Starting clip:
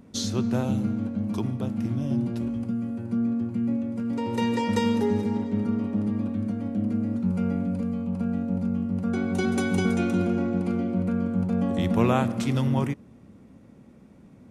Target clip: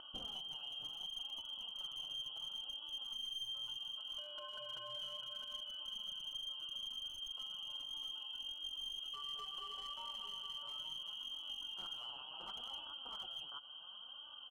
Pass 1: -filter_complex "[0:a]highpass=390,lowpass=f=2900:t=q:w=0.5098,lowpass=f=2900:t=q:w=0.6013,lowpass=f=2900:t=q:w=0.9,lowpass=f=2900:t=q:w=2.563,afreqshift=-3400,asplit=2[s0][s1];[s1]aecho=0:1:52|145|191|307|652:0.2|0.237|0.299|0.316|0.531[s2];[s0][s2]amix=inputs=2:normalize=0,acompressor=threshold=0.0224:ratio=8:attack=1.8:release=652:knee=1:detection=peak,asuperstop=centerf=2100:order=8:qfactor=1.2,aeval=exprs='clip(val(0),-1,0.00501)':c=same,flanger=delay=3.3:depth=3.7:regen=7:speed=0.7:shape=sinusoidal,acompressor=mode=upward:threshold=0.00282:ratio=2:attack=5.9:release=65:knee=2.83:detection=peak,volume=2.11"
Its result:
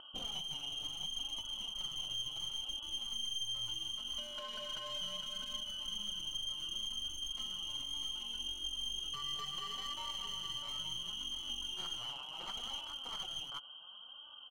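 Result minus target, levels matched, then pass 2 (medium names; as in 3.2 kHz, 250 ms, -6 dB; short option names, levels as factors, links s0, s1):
compression: peak gain reduction -6.5 dB
-filter_complex "[0:a]highpass=390,lowpass=f=2900:t=q:w=0.5098,lowpass=f=2900:t=q:w=0.6013,lowpass=f=2900:t=q:w=0.9,lowpass=f=2900:t=q:w=2.563,afreqshift=-3400,asplit=2[s0][s1];[s1]aecho=0:1:52|145|191|307|652:0.2|0.237|0.299|0.316|0.531[s2];[s0][s2]amix=inputs=2:normalize=0,acompressor=threshold=0.00944:ratio=8:attack=1.8:release=652:knee=1:detection=peak,asuperstop=centerf=2100:order=8:qfactor=1.2,aeval=exprs='clip(val(0),-1,0.00501)':c=same,flanger=delay=3.3:depth=3.7:regen=7:speed=0.7:shape=sinusoidal,acompressor=mode=upward:threshold=0.00282:ratio=2:attack=5.9:release=65:knee=2.83:detection=peak,volume=2.11"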